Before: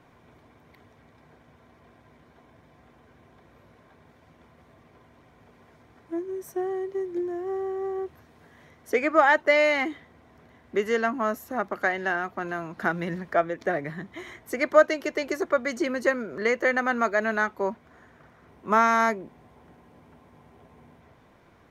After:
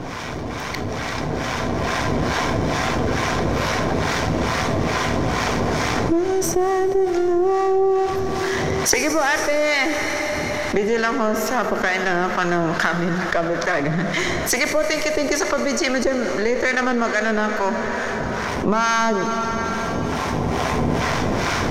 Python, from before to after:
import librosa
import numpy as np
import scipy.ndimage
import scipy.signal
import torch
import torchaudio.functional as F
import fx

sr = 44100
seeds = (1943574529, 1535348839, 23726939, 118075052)

y = np.where(x < 0.0, 10.0 ** (-7.0 / 20.0) * x, x)
y = fx.recorder_agc(y, sr, target_db=-9.5, rise_db_per_s=14.0, max_gain_db=30)
y = fx.peak_eq(y, sr, hz=5700.0, db=11.5, octaves=0.84)
y = fx.harmonic_tremolo(y, sr, hz=2.3, depth_pct=70, crossover_hz=810.0)
y = fx.high_shelf(y, sr, hz=8300.0, db=-7.0)
y = fx.rev_plate(y, sr, seeds[0], rt60_s=4.6, hf_ratio=0.95, predelay_ms=0, drr_db=11.0)
y = fx.env_flatten(y, sr, amount_pct=70)
y = y * 10.0 ** (-1.0 / 20.0)